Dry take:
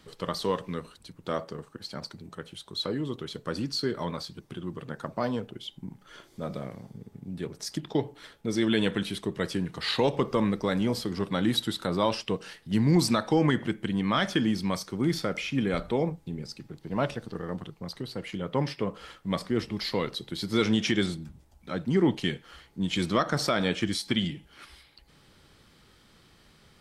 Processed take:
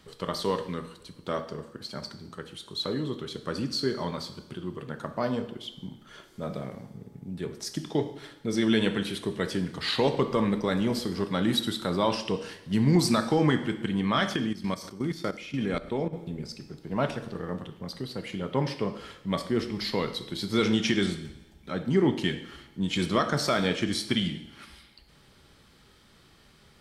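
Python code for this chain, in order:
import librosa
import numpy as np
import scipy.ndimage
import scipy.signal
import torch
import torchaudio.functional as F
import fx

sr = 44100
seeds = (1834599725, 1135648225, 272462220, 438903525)

y = fx.rev_double_slope(x, sr, seeds[0], early_s=0.86, late_s=2.2, knee_db=-20, drr_db=8.0)
y = fx.level_steps(y, sr, step_db=14, at=(14.36, 16.13))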